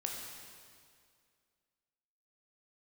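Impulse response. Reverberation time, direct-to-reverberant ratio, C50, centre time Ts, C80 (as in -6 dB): 2.2 s, -0.5 dB, 2.0 dB, 85 ms, 3.0 dB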